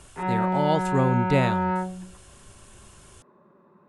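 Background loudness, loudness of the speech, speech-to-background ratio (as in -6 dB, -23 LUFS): -26.5 LUFS, -26.0 LUFS, 0.5 dB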